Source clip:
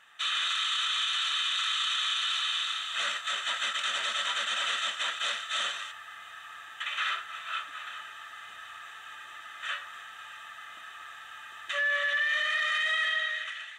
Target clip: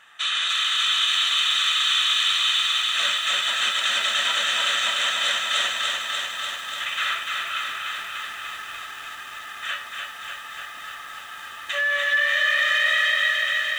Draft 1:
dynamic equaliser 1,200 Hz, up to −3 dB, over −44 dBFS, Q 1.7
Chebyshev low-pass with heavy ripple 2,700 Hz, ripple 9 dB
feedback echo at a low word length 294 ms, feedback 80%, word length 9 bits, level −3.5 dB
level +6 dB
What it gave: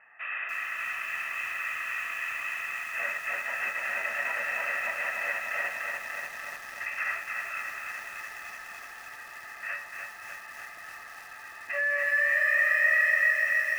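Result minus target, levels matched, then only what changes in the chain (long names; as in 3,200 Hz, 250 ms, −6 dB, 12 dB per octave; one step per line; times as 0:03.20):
2,000 Hz band +4.0 dB
remove: Chebyshev low-pass with heavy ripple 2,700 Hz, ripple 9 dB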